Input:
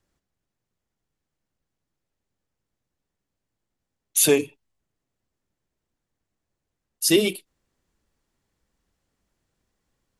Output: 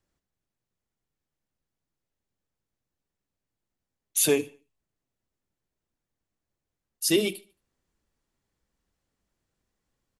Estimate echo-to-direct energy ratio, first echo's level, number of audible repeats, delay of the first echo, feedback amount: -22.5 dB, -23.0 dB, 2, 74 ms, 39%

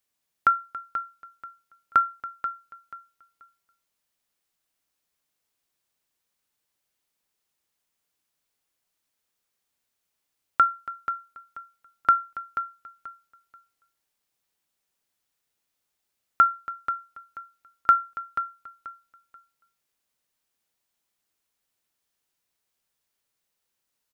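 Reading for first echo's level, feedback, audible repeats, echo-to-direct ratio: -10.5 dB, 25%, 3, -10.0 dB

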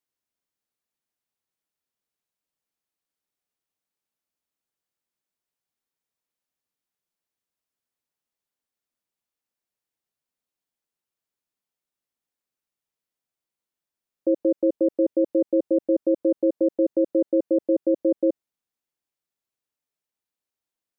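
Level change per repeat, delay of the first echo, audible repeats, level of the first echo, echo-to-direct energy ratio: no echo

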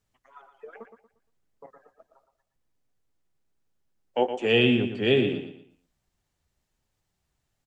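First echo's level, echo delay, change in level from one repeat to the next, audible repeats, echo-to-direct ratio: -9.0 dB, 117 ms, -10.0 dB, 3, -8.5 dB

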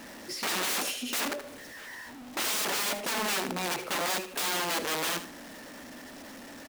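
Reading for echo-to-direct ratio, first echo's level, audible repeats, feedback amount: -12.0 dB, -12.0 dB, 2, 22%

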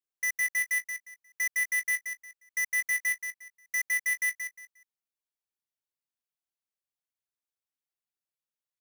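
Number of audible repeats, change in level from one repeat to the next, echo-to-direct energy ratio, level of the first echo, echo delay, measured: 3, -12.5 dB, -6.5 dB, -7.0 dB, 178 ms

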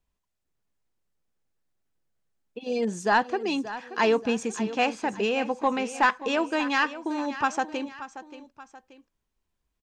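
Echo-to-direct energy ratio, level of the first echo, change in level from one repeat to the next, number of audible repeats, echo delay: -13.0 dB, -14.0 dB, -7.0 dB, 2, 580 ms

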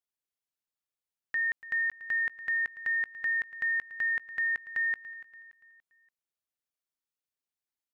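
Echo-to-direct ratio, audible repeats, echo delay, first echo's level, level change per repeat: -15.0 dB, 3, 287 ms, -16.0 dB, -7.5 dB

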